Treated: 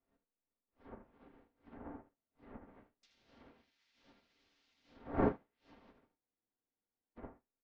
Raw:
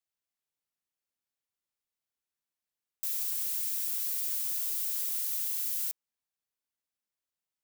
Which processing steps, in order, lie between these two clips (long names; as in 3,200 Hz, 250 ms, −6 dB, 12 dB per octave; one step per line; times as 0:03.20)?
wind on the microphone 460 Hz −41 dBFS
tilt shelving filter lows −6.5 dB, about 880 Hz
in parallel at −6.5 dB: slack as between gear wheels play −38 dBFS
on the sum: low-pass filter 5,700 Hz 24 dB per octave
far-end echo of a speakerphone 240 ms, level −27 dB
on a send at −3.5 dB: convolution reverb RT60 0.35 s, pre-delay 3 ms
on the sum: treble cut that deepens with the level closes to 1,700 Hz, closed at −33 dBFS
parametric band 280 Hz +4 dB 0.24 octaves
repeating echo 77 ms, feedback 16%, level −7 dB
treble cut that deepens with the level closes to 1,700 Hz, closed at −32.5 dBFS
frozen spectrum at 0:06.21, 0.96 s
expander for the loud parts 2.5 to 1, over −53 dBFS
level −1.5 dB